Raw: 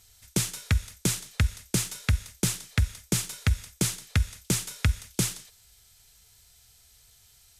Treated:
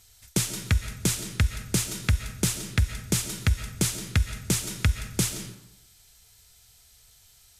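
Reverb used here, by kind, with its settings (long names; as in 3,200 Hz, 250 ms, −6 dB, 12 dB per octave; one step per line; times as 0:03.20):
comb and all-pass reverb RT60 0.81 s, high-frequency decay 0.55×, pre-delay 95 ms, DRR 9 dB
level +1 dB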